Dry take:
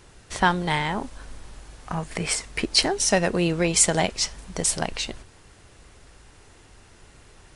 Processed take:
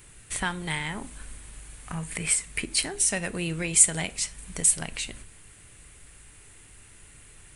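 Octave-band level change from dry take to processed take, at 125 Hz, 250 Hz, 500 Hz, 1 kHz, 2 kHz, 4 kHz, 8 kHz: -5.5, -8.0, -12.0, -12.0, -4.0, -7.5, +1.5 dB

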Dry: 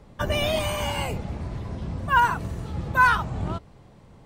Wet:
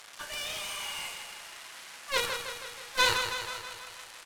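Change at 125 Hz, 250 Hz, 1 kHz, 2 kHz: -23.5, -20.0, -12.5, -7.5 dB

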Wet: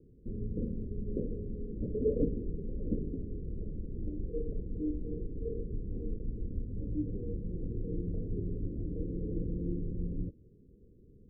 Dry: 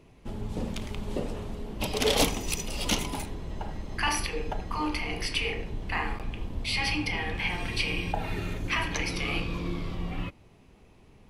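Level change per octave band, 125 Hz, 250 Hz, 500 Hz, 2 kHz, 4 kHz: -2.0 dB, -2.0 dB, -3.5 dB, under -40 dB, under -40 dB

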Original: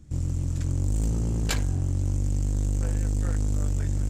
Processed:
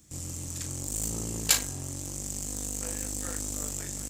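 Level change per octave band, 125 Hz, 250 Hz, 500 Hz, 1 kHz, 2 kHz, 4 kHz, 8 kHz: -14.0, -6.5, -3.0, -0.5, +1.5, +6.5, +11.0 dB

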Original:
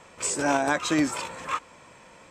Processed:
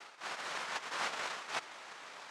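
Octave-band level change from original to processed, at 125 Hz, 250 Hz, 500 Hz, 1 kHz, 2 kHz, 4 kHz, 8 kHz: -25.5, -31.0, -18.0, -11.5, -9.0, -6.0, -17.0 dB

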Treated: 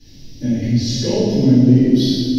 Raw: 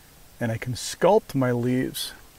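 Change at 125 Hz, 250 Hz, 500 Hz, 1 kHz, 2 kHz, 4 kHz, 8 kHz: +12.5, +14.5, +1.5, -11.0, -5.0, +9.5, +3.5 dB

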